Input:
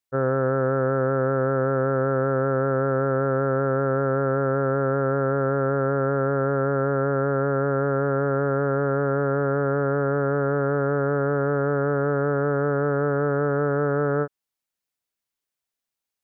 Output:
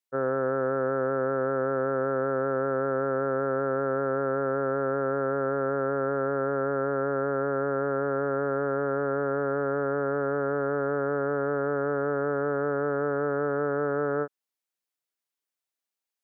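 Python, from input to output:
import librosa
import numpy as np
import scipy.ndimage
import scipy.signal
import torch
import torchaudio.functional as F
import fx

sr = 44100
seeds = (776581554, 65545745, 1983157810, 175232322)

y = scipy.signal.sosfilt(scipy.signal.butter(2, 220.0, 'highpass', fs=sr, output='sos'), x)
y = y * 10.0 ** (-3.5 / 20.0)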